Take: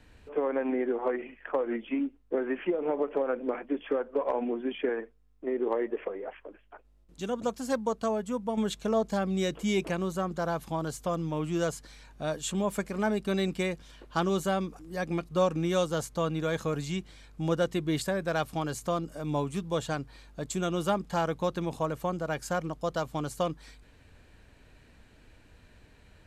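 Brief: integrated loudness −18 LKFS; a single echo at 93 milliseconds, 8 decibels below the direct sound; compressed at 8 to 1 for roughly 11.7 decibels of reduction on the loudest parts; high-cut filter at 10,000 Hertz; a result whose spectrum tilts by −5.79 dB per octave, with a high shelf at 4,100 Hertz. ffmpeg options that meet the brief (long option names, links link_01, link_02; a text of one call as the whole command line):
ffmpeg -i in.wav -af "lowpass=10000,highshelf=frequency=4100:gain=-6.5,acompressor=threshold=-35dB:ratio=8,aecho=1:1:93:0.398,volume=21.5dB" out.wav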